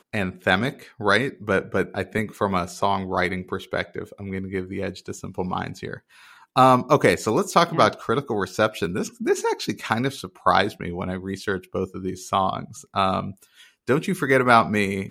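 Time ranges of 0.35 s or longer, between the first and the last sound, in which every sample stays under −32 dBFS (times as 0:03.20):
0:05.97–0:06.56
0:13.32–0:13.89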